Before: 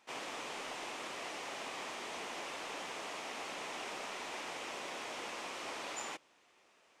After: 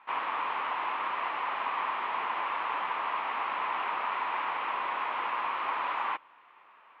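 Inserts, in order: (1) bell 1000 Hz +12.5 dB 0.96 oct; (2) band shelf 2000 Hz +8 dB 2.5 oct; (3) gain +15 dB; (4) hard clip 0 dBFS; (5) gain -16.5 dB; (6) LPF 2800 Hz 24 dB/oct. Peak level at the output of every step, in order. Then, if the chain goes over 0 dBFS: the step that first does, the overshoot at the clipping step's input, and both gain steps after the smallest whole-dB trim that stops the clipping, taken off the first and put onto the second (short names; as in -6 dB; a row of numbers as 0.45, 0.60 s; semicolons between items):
-23.0, -18.0, -3.0, -3.0, -19.5, -19.5 dBFS; no overload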